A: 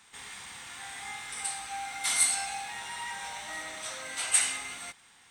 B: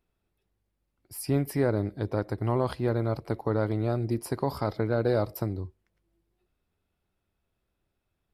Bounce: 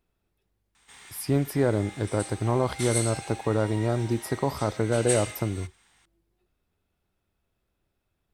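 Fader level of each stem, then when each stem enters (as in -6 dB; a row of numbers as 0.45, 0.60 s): -5.0, +2.0 dB; 0.75, 0.00 s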